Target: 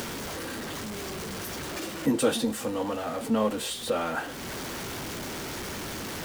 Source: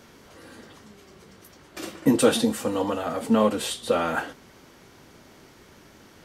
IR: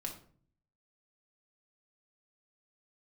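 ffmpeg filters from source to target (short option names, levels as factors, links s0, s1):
-af "aeval=exprs='val(0)+0.5*0.0299*sgn(val(0))':c=same,acompressor=mode=upward:threshold=0.0562:ratio=2.5,volume=0.501"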